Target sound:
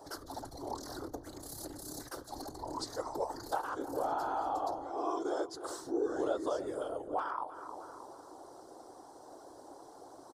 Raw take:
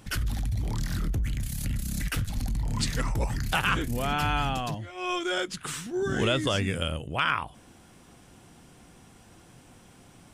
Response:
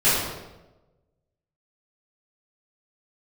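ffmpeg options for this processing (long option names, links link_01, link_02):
-filter_complex "[0:a]acrossover=split=240 5400:gain=0.0708 1 0.178[link_01][link_02][link_03];[link_01][link_02][link_03]amix=inputs=3:normalize=0,afftfilt=real='hypot(re,im)*cos(2*PI*random(0))':imag='hypot(re,im)*sin(2*PI*random(1))':win_size=512:overlap=0.75,asplit=2[link_04][link_05];[link_05]adelay=311,lowpass=frequency=1300:poles=1,volume=-15dB,asplit=2[link_06][link_07];[link_07]adelay=311,lowpass=frequency=1300:poles=1,volume=0.51,asplit=2[link_08][link_09];[link_09]adelay=311,lowpass=frequency=1300:poles=1,volume=0.51,asplit=2[link_10][link_11];[link_11]adelay=311,lowpass=frequency=1300:poles=1,volume=0.51,asplit=2[link_12][link_13];[link_13]adelay=311,lowpass=frequency=1300:poles=1,volume=0.51[link_14];[link_06][link_08][link_10][link_12][link_14]amix=inputs=5:normalize=0[link_15];[link_04][link_15]amix=inputs=2:normalize=0,acompressor=threshold=-50dB:ratio=2,firequalizer=gain_entry='entry(110,0);entry(200,-12);entry(290,7);entry(840,10);entry(2500,-27);entry(4200,2);entry(11000,10)':delay=0.05:min_phase=1,volume=5dB"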